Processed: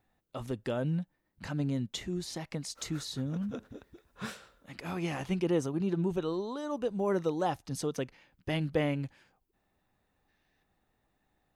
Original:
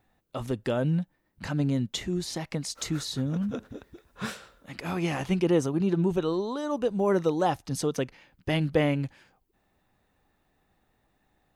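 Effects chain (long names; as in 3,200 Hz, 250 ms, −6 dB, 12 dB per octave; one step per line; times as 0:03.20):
gain on a spectral selection 0:10.28–0:10.63, 1,500–6,500 Hz +7 dB
level −5.5 dB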